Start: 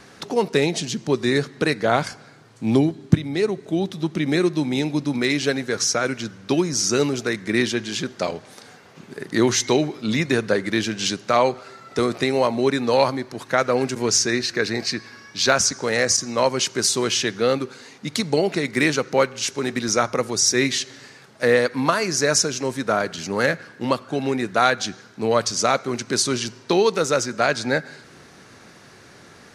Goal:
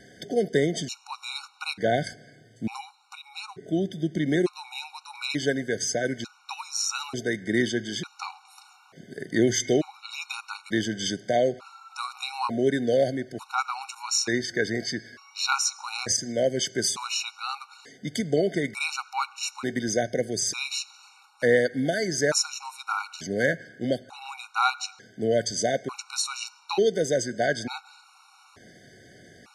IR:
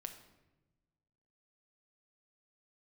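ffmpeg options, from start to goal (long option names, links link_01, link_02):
-af "afftfilt=real='re*gt(sin(2*PI*0.56*pts/sr)*(1-2*mod(floor(b*sr/1024/740),2)),0)':imag='im*gt(sin(2*PI*0.56*pts/sr)*(1-2*mod(floor(b*sr/1024/740),2)),0)':win_size=1024:overlap=0.75,volume=-3dB"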